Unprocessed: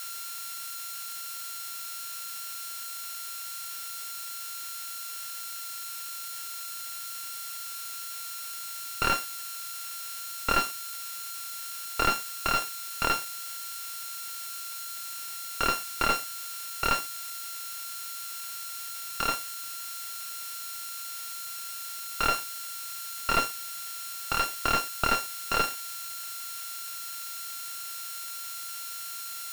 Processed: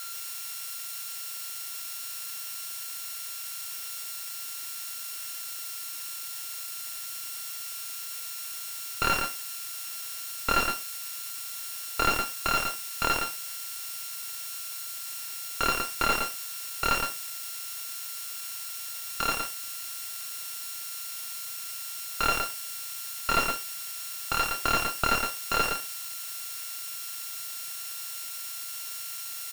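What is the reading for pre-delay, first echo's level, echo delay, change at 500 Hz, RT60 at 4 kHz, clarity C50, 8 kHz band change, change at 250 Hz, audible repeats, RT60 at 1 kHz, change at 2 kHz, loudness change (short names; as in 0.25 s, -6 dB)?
none, -5.0 dB, 0.115 s, +1.0 dB, none, none, +1.0 dB, +1.0 dB, 1, none, +1.5 dB, +1.0 dB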